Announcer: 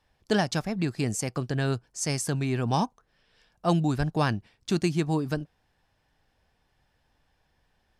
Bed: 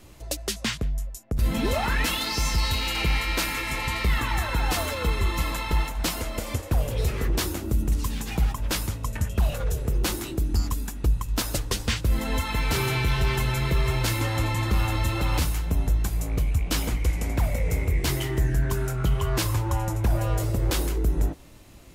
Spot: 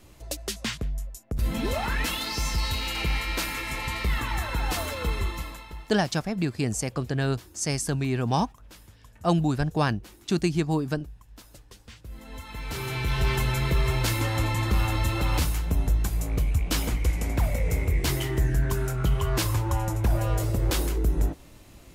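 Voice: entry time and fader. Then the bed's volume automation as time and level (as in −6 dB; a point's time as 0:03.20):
5.60 s, +1.0 dB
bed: 0:05.20 −3 dB
0:05.99 −22.5 dB
0:11.85 −22.5 dB
0:13.26 −0.5 dB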